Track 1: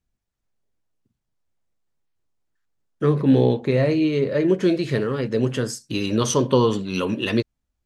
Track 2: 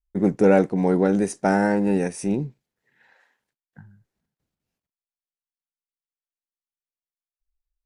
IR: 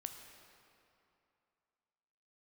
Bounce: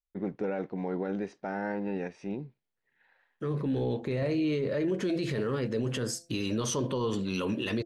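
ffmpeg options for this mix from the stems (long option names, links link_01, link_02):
-filter_complex "[0:a]bandreject=frequency=169.6:width_type=h:width=4,bandreject=frequency=339.2:width_type=h:width=4,bandreject=frequency=508.8:width_type=h:width=4,bandreject=frequency=678.4:width_type=h:width=4,alimiter=limit=-16dB:level=0:latency=1:release=11,adelay=400,volume=-2.5dB[link_01];[1:a]lowpass=frequency=4100:width=0.5412,lowpass=frequency=4100:width=1.3066,lowshelf=frequency=370:gain=-6,volume=-8dB,asplit=2[link_02][link_03];[link_03]apad=whole_len=364173[link_04];[link_01][link_04]sidechaincompress=threshold=-49dB:ratio=3:attack=16:release=1470[link_05];[link_05][link_02]amix=inputs=2:normalize=0,alimiter=limit=-22.5dB:level=0:latency=1:release=63"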